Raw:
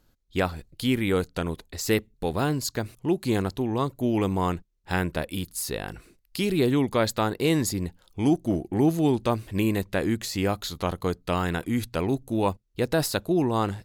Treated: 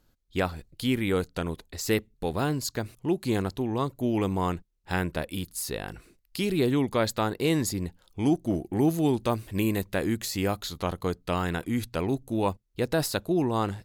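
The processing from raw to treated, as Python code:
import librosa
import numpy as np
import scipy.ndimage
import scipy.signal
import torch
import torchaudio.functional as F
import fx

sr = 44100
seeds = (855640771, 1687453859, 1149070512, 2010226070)

y = fx.high_shelf(x, sr, hz=9500.0, db=7.0, at=(8.54, 10.57))
y = y * 10.0 ** (-2.0 / 20.0)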